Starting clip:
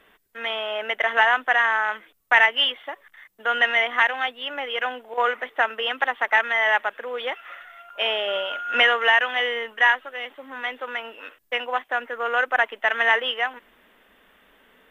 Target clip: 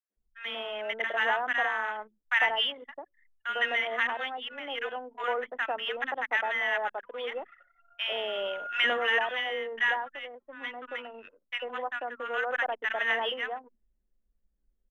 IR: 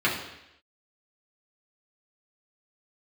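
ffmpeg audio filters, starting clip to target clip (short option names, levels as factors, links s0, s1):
-filter_complex "[0:a]lowshelf=f=310:g=9.5,acrossover=split=210|1100[s0][s1][s2];[s1]adelay=100[s3];[s0]adelay=170[s4];[s4][s3][s2]amix=inputs=3:normalize=0,anlmdn=2.51,volume=0.422"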